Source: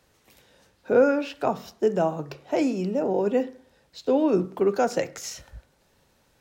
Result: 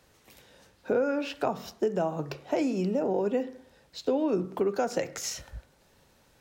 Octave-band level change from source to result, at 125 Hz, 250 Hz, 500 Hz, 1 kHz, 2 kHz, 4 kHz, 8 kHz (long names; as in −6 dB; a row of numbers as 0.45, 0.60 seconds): −2.5, −4.5, −5.0, −5.0, −4.5, −0.5, +0.5 decibels